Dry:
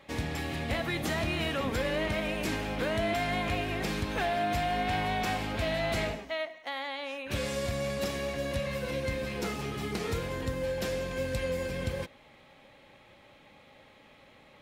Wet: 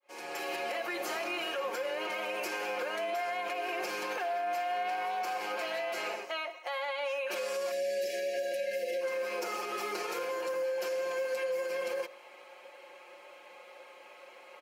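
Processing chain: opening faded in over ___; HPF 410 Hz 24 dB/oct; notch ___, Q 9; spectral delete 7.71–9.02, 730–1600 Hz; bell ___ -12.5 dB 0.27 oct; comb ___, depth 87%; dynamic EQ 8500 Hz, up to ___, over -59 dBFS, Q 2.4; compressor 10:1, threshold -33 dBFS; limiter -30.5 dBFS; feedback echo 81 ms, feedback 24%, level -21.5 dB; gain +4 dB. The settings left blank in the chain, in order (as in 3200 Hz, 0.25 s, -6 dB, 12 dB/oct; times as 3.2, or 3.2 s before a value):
0.55 s, 1900 Hz, 3600 Hz, 5.6 ms, -5 dB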